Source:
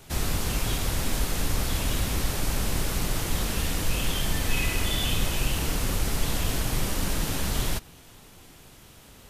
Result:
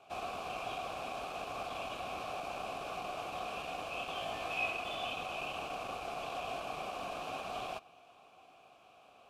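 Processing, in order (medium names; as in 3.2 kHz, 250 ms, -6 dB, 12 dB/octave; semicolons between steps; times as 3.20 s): one-sided wavefolder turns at -21.5 dBFS; vowel filter a; 4.15–4.71 s: flutter echo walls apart 3.1 m, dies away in 0.2 s; trim +5.5 dB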